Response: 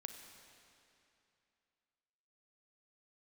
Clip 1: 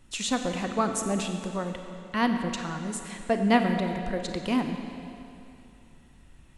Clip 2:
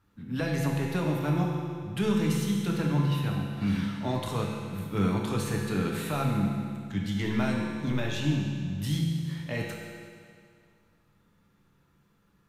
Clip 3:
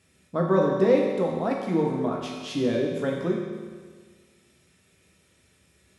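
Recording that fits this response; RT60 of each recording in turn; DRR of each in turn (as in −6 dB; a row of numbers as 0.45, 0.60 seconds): 1; 2.8, 2.1, 1.6 seconds; 5.5, −1.0, −1.5 decibels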